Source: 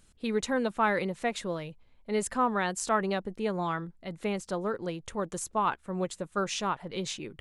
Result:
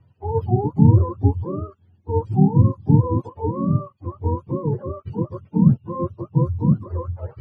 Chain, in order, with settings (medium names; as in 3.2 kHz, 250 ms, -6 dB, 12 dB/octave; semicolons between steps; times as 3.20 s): spectrum inverted on a logarithmic axis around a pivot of 440 Hz; level-controlled noise filter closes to 2.3 kHz, open at -26 dBFS; RIAA curve playback; trim +3.5 dB